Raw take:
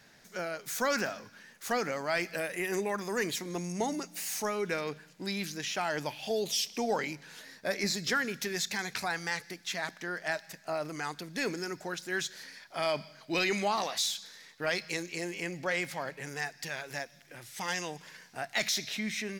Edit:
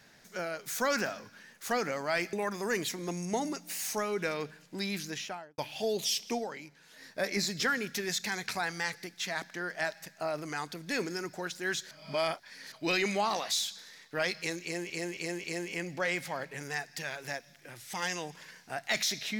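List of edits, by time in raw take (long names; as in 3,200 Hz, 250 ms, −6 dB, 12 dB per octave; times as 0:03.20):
0:02.33–0:02.80: remove
0:05.56–0:06.05: fade out and dull
0:06.81–0:07.51: duck −9.5 dB, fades 0.12 s
0:12.38–0:13.19: reverse
0:15.10–0:15.37: repeat, 4 plays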